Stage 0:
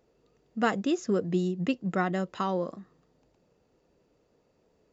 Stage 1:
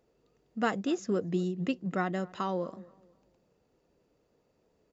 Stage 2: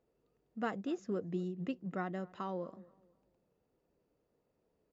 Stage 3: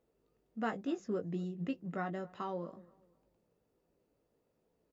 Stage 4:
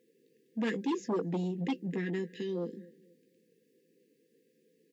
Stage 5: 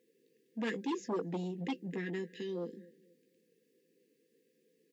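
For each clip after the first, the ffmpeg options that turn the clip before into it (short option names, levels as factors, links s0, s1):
-filter_complex "[0:a]asplit=2[s0][s1];[s1]adelay=242,lowpass=f=1500:p=1,volume=0.0891,asplit=2[s2][s3];[s3]adelay=242,lowpass=f=1500:p=1,volume=0.34,asplit=2[s4][s5];[s5]adelay=242,lowpass=f=1500:p=1,volume=0.34[s6];[s0][s2][s4][s6]amix=inputs=4:normalize=0,volume=0.708"
-af "highshelf=f=3500:g=-10,volume=0.447"
-filter_complex "[0:a]asplit=2[s0][s1];[s1]adelay=18,volume=0.447[s2];[s0][s2]amix=inputs=2:normalize=0"
-af "afftfilt=real='re*(1-between(b*sr/4096,530,1600))':imag='im*(1-between(b*sr/4096,530,1600))':win_size=4096:overlap=0.75,aeval=exprs='0.0473*sin(PI/2*2*val(0)/0.0473)':c=same,highpass=f=180:w=0.5412,highpass=f=180:w=1.3066"
-af "lowshelf=f=280:g=-5.5,volume=0.841"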